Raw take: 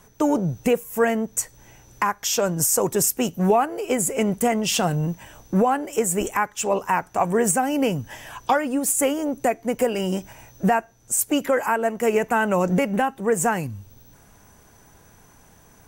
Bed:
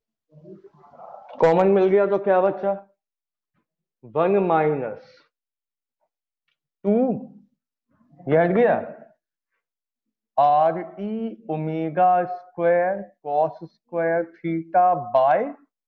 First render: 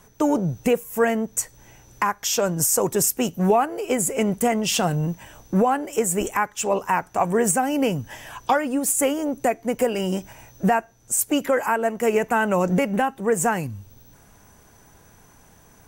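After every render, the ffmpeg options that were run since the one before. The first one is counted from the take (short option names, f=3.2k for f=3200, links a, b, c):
-af anull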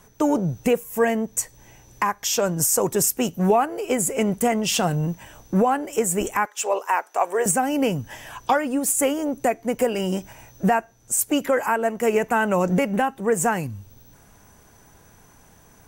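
-filter_complex "[0:a]asettb=1/sr,asplit=3[a][b][c];[a]atrim=end=0.894[d];[b]atrim=start=0.89:end=2.36,asetpts=PTS-STARTPTS,afade=t=in:d=0.004:c=qsin,afade=t=out:st=1.466:d=0.004:c=qsin,bandreject=f=1.4k:w=10[e];[c]atrim=start=2.356[f];[d][e]acrossfade=d=0.004:c1=hsin:c2=qsin[g];[g][f]acrossfade=d=0.004:c1=qsin:c2=hsin,asettb=1/sr,asplit=3[h][i][j];[h]atrim=end=6.454[k];[i]atrim=start=6.45:end=7.46,asetpts=PTS-STARTPTS,afade=t=in:d=0.004:c=qsin,afade=t=out:st=1.006:d=0.004:c=qsin,highpass=f=400:w=0.5412,highpass=f=400:w=1.3066[l];[j]atrim=start=7.456[m];[k][l]acrossfade=d=0.004:c1=hsin:c2=qsin[n];[n][m]acrossfade=d=0.004:c1=qsin:c2=hsin"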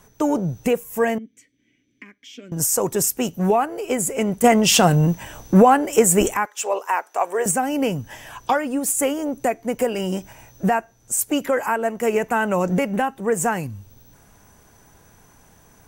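-filter_complex "[0:a]asettb=1/sr,asplit=3[a][b][c];[a]atrim=end=1.184[d];[b]atrim=start=1.18:end=2.52,asetpts=PTS-STARTPTS,afade=t=in:d=0.004:c=qsin,afade=t=out:st=1.336:d=0.004:c=qsin,asplit=3[e][f][g];[e]bandpass=f=270:t=q:w=8,volume=0dB[h];[f]bandpass=f=2.29k:t=q:w=8,volume=-6dB[i];[g]bandpass=f=3.01k:t=q:w=8,volume=-9dB[j];[h][i][j]amix=inputs=3:normalize=0[k];[c]atrim=start=2.516[l];[d][k]acrossfade=d=0.004:c1=hsin:c2=qsin[m];[m][l]acrossfade=d=0.004:c1=qsin:c2=hsin,asplit=3[n][o][p];[n]atrim=end=4.442[q];[o]atrim=start=4.438:end=6.342,asetpts=PTS-STARTPTS,volume=7dB[r];[p]atrim=start=6.338[s];[q][r]acrossfade=d=0.004:c1=hsin:c2=hsin[t];[t][s]acrossfade=d=0.004:c1=hsin:c2=hsin"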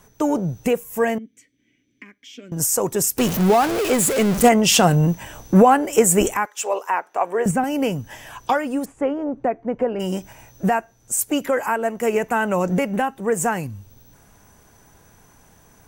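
-filter_complex "[0:a]asettb=1/sr,asplit=3[a][b][c];[a]atrim=end=3.184[d];[b]atrim=start=3.18:end=4.49,asetpts=PTS-STARTPTS,afade=t=in:d=0.004:c=qsin,afade=t=out:st=1.306:d=0.004:c=qsin,aeval=exprs='val(0)+0.5*0.112*sgn(val(0))':c=same[e];[c]atrim=start=4.486[f];[d][e]acrossfade=d=0.004:c1=hsin:c2=qsin[g];[g][f]acrossfade=d=0.004:c1=qsin:c2=hsin,asettb=1/sr,asplit=3[h][i][j];[h]atrim=end=6.894[k];[i]atrim=start=6.89:end=7.64,asetpts=PTS-STARTPTS,afade=t=in:d=0.004:c=qsin,afade=t=out:st=0.746:d=0.004:c=qsin,bass=f=250:g=10,treble=f=4k:g=-10[l];[j]atrim=start=7.636[m];[k][l]acrossfade=d=0.004:c1=hsin:c2=qsin[n];[n][m]acrossfade=d=0.004:c1=qsin:c2=hsin,asplit=3[o][p][q];[o]afade=t=out:st=8.84:d=0.02[r];[p]lowpass=1.4k,afade=t=in:st=8.84:d=0.02,afade=t=out:st=9.99:d=0.02[s];[q]afade=t=in:st=9.99:d=0.02[t];[r][s][t]amix=inputs=3:normalize=0"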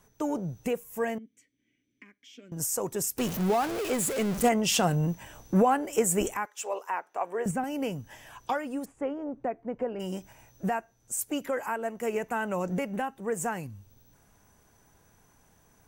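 -af "volume=-10dB"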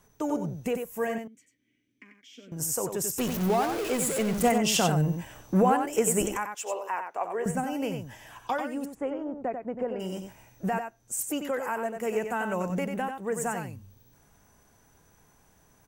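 -af "aecho=1:1:93:0.473"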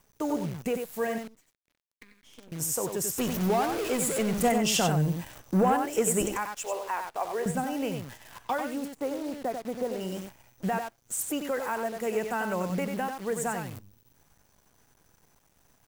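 -af "acrusher=bits=8:dc=4:mix=0:aa=0.000001,asoftclip=type=tanh:threshold=-14dB"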